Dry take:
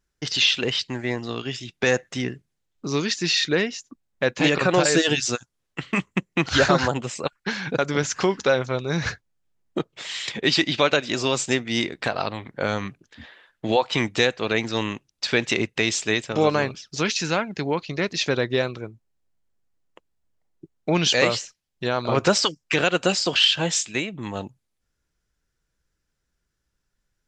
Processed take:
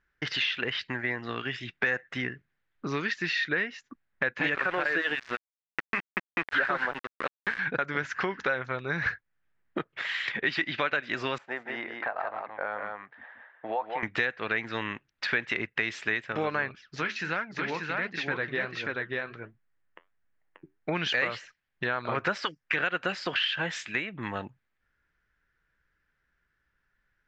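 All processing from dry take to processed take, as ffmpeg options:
-filter_complex "[0:a]asettb=1/sr,asplit=3[a][b][c];[a]atrim=end=4.554[d];[b]atrim=start=4.55:end=7.59,asetpts=PTS-STARTPTS,afade=t=in:d=0.004:c=qsin,afade=t=out:st=3.036:d=0.004:c=qsin,highpass=250,lowpass=3.6k,aeval=exprs='val(0)*gte(abs(val(0)),0.0447)':c=same[e];[c]atrim=start=7.586[f];[d][e]acrossfade=d=0.004:c1=hsin:c2=qsin[g];[g][f]acrossfade=d=0.004:c1=qsin:c2=hsin,asettb=1/sr,asplit=3[h][i][j];[h]atrim=end=11.384[k];[i]atrim=start=11.38:end=14.03,asetpts=PTS-STARTPTS,afade=t=in:d=0.004:c=qsin,afade=t=out:st=2.646:d=0.004:c=qsin,bandpass=f=770:t=q:w=2,aecho=1:1:175:0.501,atrim=end_sample=116865[l];[j]atrim=start=14.026[m];[k][l]acrossfade=d=0.004:c1=hsin:c2=qsin[n];[n][m]acrossfade=d=0.004:c1=qsin:c2=hsin,asettb=1/sr,asplit=3[o][p][q];[o]atrim=end=16.754[r];[p]atrim=start=16.75:end=20.89,asetpts=PTS-STARTPTS,afade=t=in:d=0.004:c=qsin,afade=t=out:st=4.136:d=0.004:c=qsin,aecho=1:1:585:0.668,atrim=end_sample=182574,flanger=delay=3.4:depth=8.7:regen=-70:speed=1.4:shape=sinusoidal[s];[q]atrim=start=20.886[t];[r][s]acrossfade=d=0.004:c1=hsin:c2=qsin[u];[u][t]acrossfade=d=0.004:c1=qsin:c2=hsin,lowpass=3.2k,equalizer=f=1.7k:w=1.2:g=14.5,acompressor=threshold=-28dB:ratio=2.5,volume=-2.5dB"

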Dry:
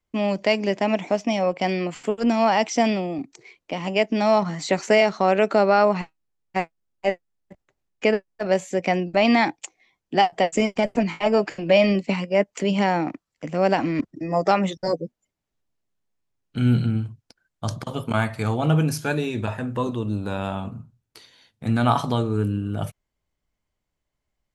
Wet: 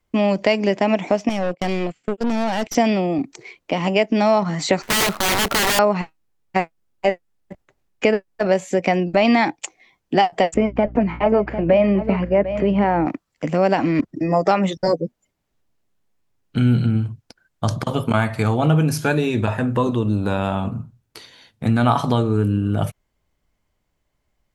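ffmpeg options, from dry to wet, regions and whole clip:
-filter_complex "[0:a]asettb=1/sr,asplit=3[a][b][c];[a]atrim=end=1.294[d];[b]atrim=start=1.29:end=2.75,asetpts=PTS-STARTPTS,afade=t=in:d=0.004:c=qsin,afade=t=out:st=1.456:d=0.004:c=qsin,agate=range=-24dB:threshold=-31dB:ratio=16:release=100:detection=peak,equalizer=f=1k:t=o:w=0.81:g=-10,aeval=exprs='(tanh(17.8*val(0)+0.75)-tanh(0.75))/17.8':c=same[e];[c]atrim=start=2.746[f];[d][e]acrossfade=d=0.004:c1=hsin:c2=qsin[g];[g][f]acrossfade=d=0.004:c1=qsin:c2=hsin,asettb=1/sr,asplit=3[h][i][j];[h]atrim=end=4.824[k];[i]atrim=start=4.82:end=5.79,asetpts=PTS-STARTPTS,afade=t=in:d=0.004:c=qsin,afade=t=out:st=0.966:d=0.004:c=qsin,lowpass=2.1k,acrusher=bits=7:dc=4:mix=0:aa=0.000001,aeval=exprs='(mod(8.91*val(0)+1,2)-1)/8.91':c=same[l];[j]atrim=start=5.786[m];[k][l]acrossfade=d=0.004:c1=hsin:c2=qsin[n];[n][m]acrossfade=d=0.004:c1=qsin:c2=hsin,asettb=1/sr,asplit=3[o][p][q];[o]atrim=end=10.544[r];[p]atrim=start=10.54:end=13.06,asetpts=PTS-STARTPTS,afade=t=in:d=0.004:c=qsin,afade=t=out:st=2.516:d=0.004:c=qsin,lowpass=1.7k,aeval=exprs='val(0)+0.01*(sin(2*PI*60*n/s)+sin(2*PI*2*60*n/s)/2+sin(2*PI*3*60*n/s)/3+sin(2*PI*4*60*n/s)/4+sin(2*PI*5*60*n/s)/5)':c=same,aecho=1:1:748:0.211,atrim=end_sample=111132[s];[q]atrim=start=13.056[t];[r][s]acrossfade=d=0.004:c1=hsin:c2=qsin[u];[u][t]acrossfade=d=0.004:c1=qsin:c2=hsin,aemphasis=mode=reproduction:type=cd,acompressor=threshold=-26dB:ratio=2,highshelf=f=9k:g=10,volume=8.5dB"

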